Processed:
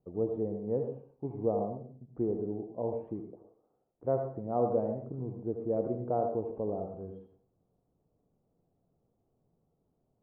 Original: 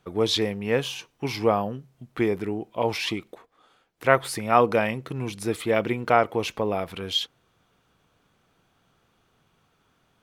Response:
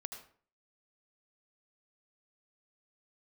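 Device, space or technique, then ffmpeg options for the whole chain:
next room: -filter_complex "[0:a]lowpass=f=660:w=0.5412,lowpass=f=660:w=1.3066[a];[1:a]atrim=start_sample=2205[b];[a][b]afir=irnorm=-1:irlink=0,volume=-4dB"

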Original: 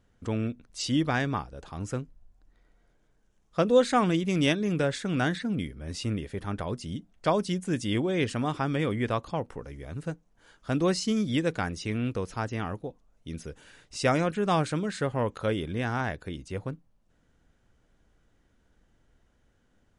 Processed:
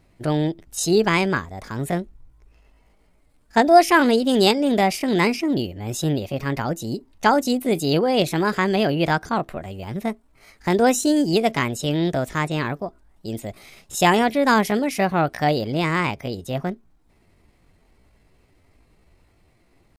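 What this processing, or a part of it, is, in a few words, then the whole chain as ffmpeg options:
chipmunk voice: -af "asetrate=60591,aresample=44100,atempo=0.727827,volume=8dB"

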